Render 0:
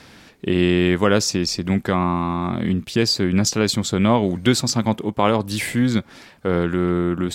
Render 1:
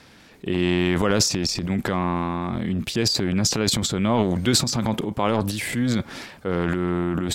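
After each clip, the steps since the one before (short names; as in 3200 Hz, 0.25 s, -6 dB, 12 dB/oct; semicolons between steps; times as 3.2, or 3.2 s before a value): transient shaper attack 0 dB, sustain +12 dB; gain -5 dB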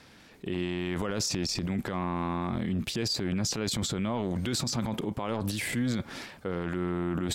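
limiter -16.5 dBFS, peak gain reduction 10.5 dB; gain -4.5 dB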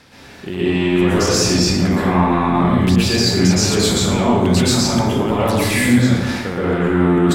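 plate-style reverb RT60 1.3 s, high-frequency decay 0.55×, pre-delay 0.105 s, DRR -9.5 dB; gain +6 dB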